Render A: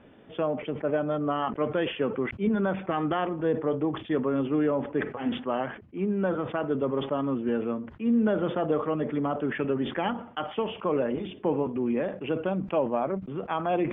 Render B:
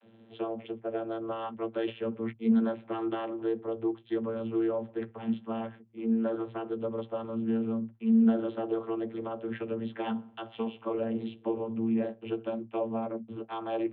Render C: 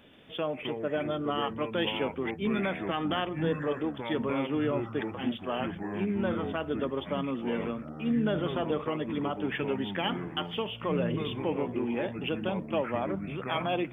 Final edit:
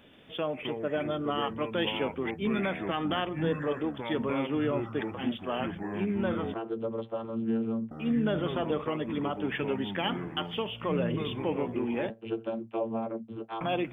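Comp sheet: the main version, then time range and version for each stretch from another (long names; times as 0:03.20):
C
0:06.54–0:07.91: punch in from B
0:12.10–0:13.61: punch in from B
not used: A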